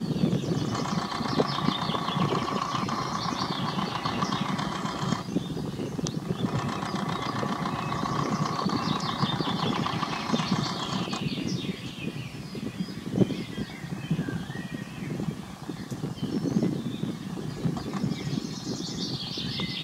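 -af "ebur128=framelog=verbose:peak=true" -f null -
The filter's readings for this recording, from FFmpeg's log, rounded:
Integrated loudness:
  I:         -29.9 LUFS
  Threshold: -39.9 LUFS
Loudness range:
  LRA:         4.1 LU
  Threshold: -50.0 LUFS
  LRA low:   -32.3 LUFS
  LRA high:  -28.1 LUFS
True peak:
  Peak:       -7.6 dBFS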